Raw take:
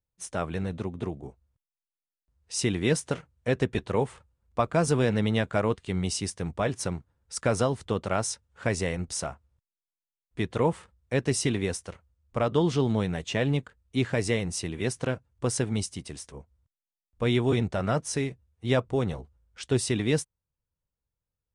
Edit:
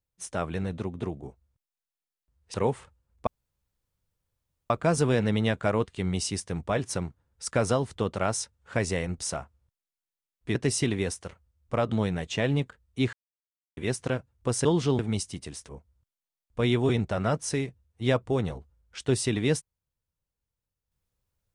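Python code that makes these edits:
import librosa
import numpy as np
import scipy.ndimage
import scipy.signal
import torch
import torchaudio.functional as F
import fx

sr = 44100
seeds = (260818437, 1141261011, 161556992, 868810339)

y = fx.edit(x, sr, fx.cut(start_s=2.54, length_s=1.33),
    fx.insert_room_tone(at_s=4.6, length_s=1.43),
    fx.cut(start_s=10.45, length_s=0.73),
    fx.move(start_s=12.55, length_s=0.34, to_s=15.62),
    fx.silence(start_s=14.1, length_s=0.64), tone=tone)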